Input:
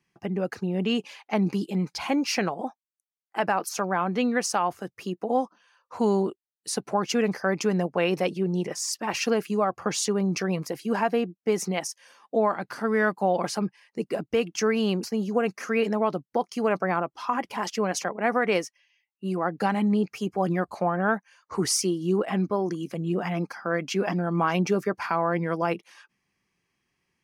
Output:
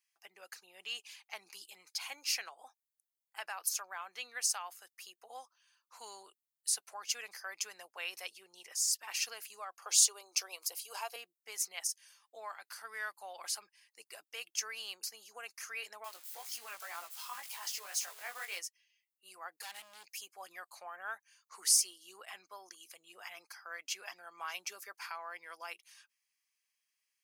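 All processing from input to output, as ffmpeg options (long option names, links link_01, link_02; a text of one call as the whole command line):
ffmpeg -i in.wav -filter_complex "[0:a]asettb=1/sr,asplit=3[link_01][link_02][link_03];[link_01]atrim=end=9.824[link_04];[link_02]atrim=start=9.82:end=11.16,asetpts=PTS-STARTPTS,afade=type=in:duration=0.004:curve=qsin,afade=type=out:start_time=1.336:duration=0.004:curve=qsin,highpass=frequency=350:width=0.5412,highpass=frequency=350:width=1.3066,equalizer=frequency=1800:width=2.5:gain=-13,acontrast=40[link_05];[link_03]atrim=start=11.156[link_06];[link_04][link_05]acrossfade=duration=0.004:curve1=hsin:curve2=qsin[link_07];[link_07][link_06]acrossfade=duration=0.004:curve1=qsin:curve2=hsin,asettb=1/sr,asplit=3[link_08][link_09][link_10];[link_08]atrim=end=16.044[link_11];[link_09]atrim=start=16.04:end=18.59,asetpts=PTS-STARTPTS,afade=type=in:duration=0.004:curve=qsin,afade=type=out:start_time=2.546:duration=0.004:curve=qsin,aeval=exprs='val(0)+0.5*0.0211*sgn(val(0))':channel_layout=same,flanger=delay=17:depth=3.7:speed=2[link_12];[link_10]atrim=start=18.586[link_13];[link_11][link_12]acrossfade=duration=0.004:curve1=hsin:curve2=qsin[link_14];[link_14][link_13]acrossfade=duration=0.004:curve1=qsin:curve2=hsin,asettb=1/sr,asplit=3[link_15][link_16][link_17];[link_15]atrim=end=19.604[link_18];[link_16]atrim=start=19.6:end=20.21,asetpts=PTS-STARTPTS,afade=type=in:duration=0.004:curve=qsin,afade=type=out:start_time=0.606:duration=0.004:curve=qsin,asuperstop=centerf=1300:order=8:qfactor=2.6,highshelf=frequency=4900:gain=5.5,volume=26dB,asoftclip=hard,volume=-26dB[link_19];[link_17]atrim=start=20.206[link_20];[link_18][link_19]acrossfade=duration=0.004:curve1=hsin:curve2=qsin[link_21];[link_21][link_20]acrossfade=duration=0.004:curve1=qsin:curve2=hsin,highpass=700,aderivative,bandreject=frequency=5700:width=27" out.wav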